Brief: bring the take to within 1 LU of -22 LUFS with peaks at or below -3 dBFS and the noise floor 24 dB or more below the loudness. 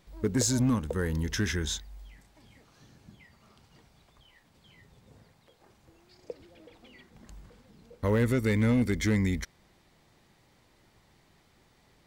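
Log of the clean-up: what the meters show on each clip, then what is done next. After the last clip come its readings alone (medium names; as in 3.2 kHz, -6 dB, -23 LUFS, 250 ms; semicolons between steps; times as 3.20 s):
clipped samples 0.7%; clipping level -19.5 dBFS; loudness -28.0 LUFS; peak level -19.5 dBFS; loudness target -22.0 LUFS
-> clip repair -19.5 dBFS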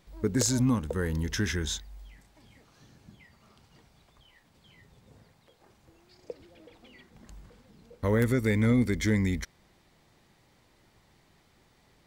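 clipped samples 0.0%; loudness -27.5 LUFS; peak level -10.5 dBFS; loudness target -22.0 LUFS
-> trim +5.5 dB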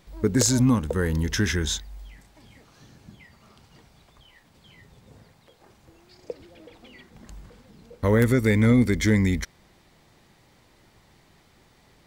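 loudness -22.0 LUFS; peak level -5.0 dBFS; noise floor -59 dBFS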